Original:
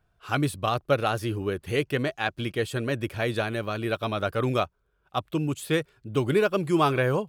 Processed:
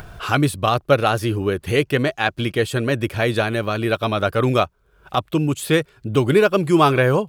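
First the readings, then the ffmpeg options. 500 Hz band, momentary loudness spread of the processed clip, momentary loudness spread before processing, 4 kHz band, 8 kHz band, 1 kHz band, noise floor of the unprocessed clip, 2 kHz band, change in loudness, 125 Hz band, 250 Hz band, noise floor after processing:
+7.5 dB, 7 LU, 7 LU, +7.5 dB, +8.0 dB, +7.5 dB, -71 dBFS, +7.5 dB, +7.5 dB, +7.5 dB, +7.5 dB, -59 dBFS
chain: -af "acompressor=mode=upward:threshold=0.0447:ratio=2.5,volume=2.37"

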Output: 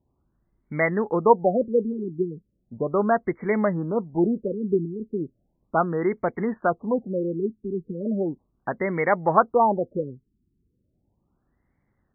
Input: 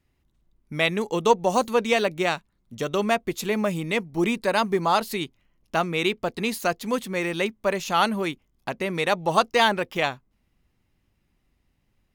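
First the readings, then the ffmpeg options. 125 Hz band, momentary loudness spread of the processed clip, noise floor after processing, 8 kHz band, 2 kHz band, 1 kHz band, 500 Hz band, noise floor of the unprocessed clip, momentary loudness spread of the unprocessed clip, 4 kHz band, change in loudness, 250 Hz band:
+1.5 dB, 12 LU, -73 dBFS, under -40 dB, -5.5 dB, -0.5 dB, +1.5 dB, -71 dBFS, 9 LU, under -40 dB, 0.0 dB, +2.0 dB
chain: -af "highpass=f=79:p=1,afftfilt=real='re*lt(b*sr/1024,420*pow(2300/420,0.5+0.5*sin(2*PI*0.36*pts/sr)))':imag='im*lt(b*sr/1024,420*pow(2300/420,0.5+0.5*sin(2*PI*0.36*pts/sr)))':win_size=1024:overlap=0.75,volume=1.33"

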